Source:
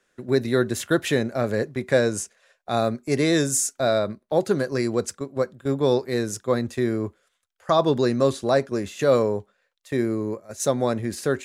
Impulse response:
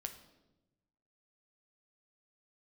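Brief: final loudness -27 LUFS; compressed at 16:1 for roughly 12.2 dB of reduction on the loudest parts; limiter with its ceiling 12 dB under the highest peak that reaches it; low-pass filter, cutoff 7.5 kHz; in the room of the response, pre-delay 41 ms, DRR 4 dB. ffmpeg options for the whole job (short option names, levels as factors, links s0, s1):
-filter_complex "[0:a]lowpass=7500,acompressor=threshold=0.0501:ratio=16,alimiter=level_in=1.19:limit=0.0631:level=0:latency=1,volume=0.841,asplit=2[s0][s1];[1:a]atrim=start_sample=2205,adelay=41[s2];[s1][s2]afir=irnorm=-1:irlink=0,volume=0.841[s3];[s0][s3]amix=inputs=2:normalize=0,volume=2.37"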